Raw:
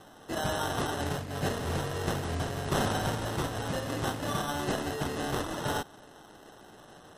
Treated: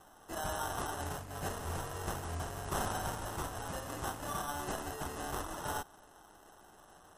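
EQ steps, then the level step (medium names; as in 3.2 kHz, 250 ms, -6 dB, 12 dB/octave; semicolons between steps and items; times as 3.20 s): ten-band graphic EQ 125 Hz -11 dB, 250 Hz -8 dB, 500 Hz -8 dB, 2 kHz -7 dB, 4 kHz -10 dB; 0.0 dB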